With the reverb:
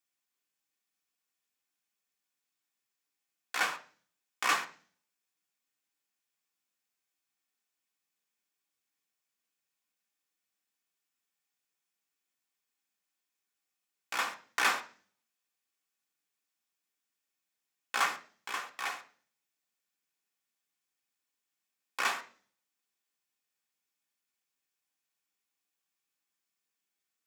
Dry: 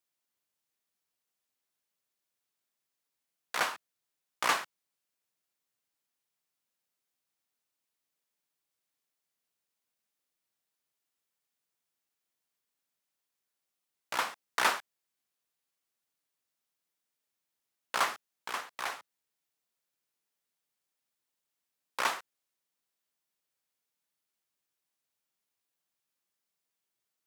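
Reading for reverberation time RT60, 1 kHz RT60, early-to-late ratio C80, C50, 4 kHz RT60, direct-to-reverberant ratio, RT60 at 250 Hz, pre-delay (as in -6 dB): 0.40 s, 0.40 s, 19.5 dB, 14.5 dB, 0.50 s, 3.0 dB, 0.65 s, 3 ms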